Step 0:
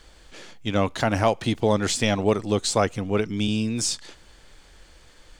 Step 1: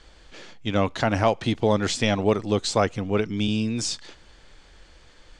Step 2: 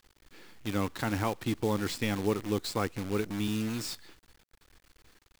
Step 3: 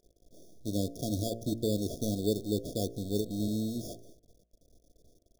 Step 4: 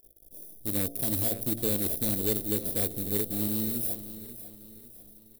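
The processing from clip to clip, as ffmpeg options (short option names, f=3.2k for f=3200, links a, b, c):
-af "lowpass=6.4k"
-af "equalizer=f=315:t=o:w=0.33:g=4,equalizer=f=630:t=o:w=0.33:g=-12,equalizer=f=3.15k:t=o:w=0.33:g=-5,equalizer=f=6.3k:t=o:w=0.33:g=-9,acrusher=bits=6:dc=4:mix=0:aa=0.000001,volume=-7.5dB"
-af "acrusher=samples=11:mix=1:aa=0.000001,afftfilt=real='re*(1-between(b*sr/4096,720,3300))':imag='im*(1-between(b*sr/4096,720,3300))':win_size=4096:overlap=0.75,bandreject=f=57.01:t=h:w=4,bandreject=f=114.02:t=h:w=4,bandreject=f=171.03:t=h:w=4,bandreject=f=228.04:t=h:w=4,bandreject=f=285.05:t=h:w=4,bandreject=f=342.06:t=h:w=4,bandreject=f=399.07:t=h:w=4,bandreject=f=456.08:t=h:w=4,bandreject=f=513.09:t=h:w=4,bandreject=f=570.1:t=h:w=4,bandreject=f=627.11:t=h:w=4,bandreject=f=684.12:t=h:w=4,bandreject=f=741.13:t=h:w=4,bandreject=f=798.14:t=h:w=4,bandreject=f=855.15:t=h:w=4,bandreject=f=912.16:t=h:w=4,bandreject=f=969.17:t=h:w=4,bandreject=f=1.02618k:t=h:w=4,bandreject=f=1.08319k:t=h:w=4,bandreject=f=1.1402k:t=h:w=4,bandreject=f=1.19721k:t=h:w=4,bandreject=f=1.25422k:t=h:w=4,bandreject=f=1.31123k:t=h:w=4,bandreject=f=1.36824k:t=h:w=4,bandreject=f=1.42525k:t=h:w=4,bandreject=f=1.48226k:t=h:w=4,bandreject=f=1.53927k:t=h:w=4,bandreject=f=1.59628k:t=h:w=4,bandreject=f=1.65329k:t=h:w=4,bandreject=f=1.7103k:t=h:w=4,bandreject=f=1.76731k:t=h:w=4,bandreject=f=1.82432k:t=h:w=4,bandreject=f=1.88133k:t=h:w=4,bandreject=f=1.93834k:t=h:w=4,bandreject=f=1.99535k:t=h:w=4,bandreject=f=2.05236k:t=h:w=4,bandreject=f=2.10937k:t=h:w=4,bandreject=f=2.16638k:t=h:w=4"
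-af "aexciter=amount=9.7:drive=6.6:freq=9.4k,asoftclip=type=hard:threshold=-20.5dB,aecho=1:1:546|1092|1638|2184:0.211|0.0888|0.0373|0.0157"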